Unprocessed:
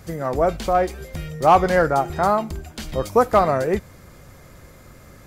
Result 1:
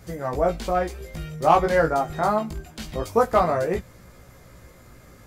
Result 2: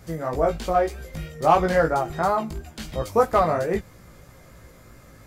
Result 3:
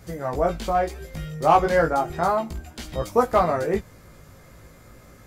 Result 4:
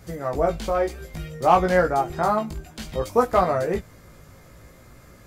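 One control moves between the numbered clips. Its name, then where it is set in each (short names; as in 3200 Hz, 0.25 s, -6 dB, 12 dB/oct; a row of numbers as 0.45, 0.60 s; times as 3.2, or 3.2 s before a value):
chorus, rate: 0.23, 3, 0.35, 0.59 Hz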